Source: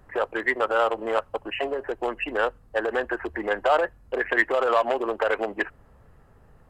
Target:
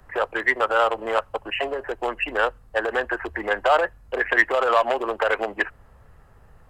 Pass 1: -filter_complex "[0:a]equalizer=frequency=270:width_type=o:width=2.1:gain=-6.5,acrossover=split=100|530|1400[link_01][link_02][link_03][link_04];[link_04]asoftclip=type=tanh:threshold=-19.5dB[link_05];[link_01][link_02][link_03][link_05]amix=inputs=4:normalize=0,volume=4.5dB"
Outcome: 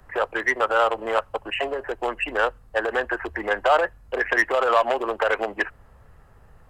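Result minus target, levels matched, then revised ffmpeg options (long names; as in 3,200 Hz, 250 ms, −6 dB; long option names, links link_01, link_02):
soft clipping: distortion +16 dB
-filter_complex "[0:a]equalizer=frequency=270:width_type=o:width=2.1:gain=-6.5,acrossover=split=100|530|1400[link_01][link_02][link_03][link_04];[link_04]asoftclip=type=tanh:threshold=-8dB[link_05];[link_01][link_02][link_03][link_05]amix=inputs=4:normalize=0,volume=4.5dB"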